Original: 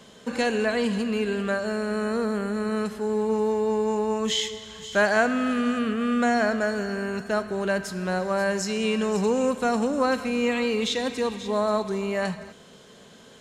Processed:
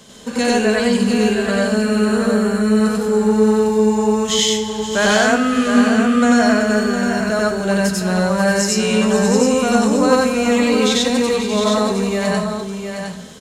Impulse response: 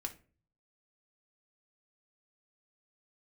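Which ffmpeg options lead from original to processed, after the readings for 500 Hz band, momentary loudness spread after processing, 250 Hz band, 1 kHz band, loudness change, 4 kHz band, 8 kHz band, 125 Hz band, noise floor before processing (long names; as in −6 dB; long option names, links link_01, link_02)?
+8.0 dB, 5 LU, +11.0 dB, +7.5 dB, +9.5 dB, +10.5 dB, +14.5 dB, +11.5 dB, −50 dBFS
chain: -filter_complex "[0:a]bass=frequency=250:gain=3,treble=frequency=4000:gain=8,aecho=1:1:711:0.447,asplit=2[link_01][link_02];[1:a]atrim=start_sample=2205,adelay=93[link_03];[link_02][link_03]afir=irnorm=-1:irlink=0,volume=3.5dB[link_04];[link_01][link_04]amix=inputs=2:normalize=0,volume=2.5dB"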